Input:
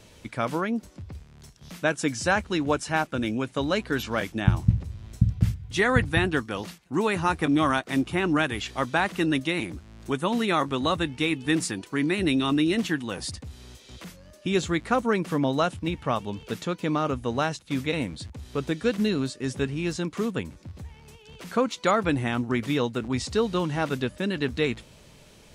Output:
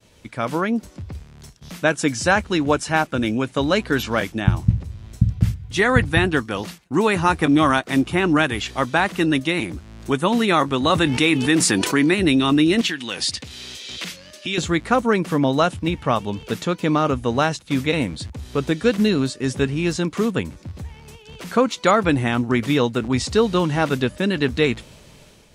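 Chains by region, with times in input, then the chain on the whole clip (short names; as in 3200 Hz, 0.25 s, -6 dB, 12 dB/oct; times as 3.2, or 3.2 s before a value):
10.9–12.14 HPF 170 Hz 6 dB/oct + fast leveller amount 70%
12.81–14.58 compressor 2.5:1, threshold -35 dBFS + weighting filter D
whole clip: expander -49 dBFS; AGC gain up to 7 dB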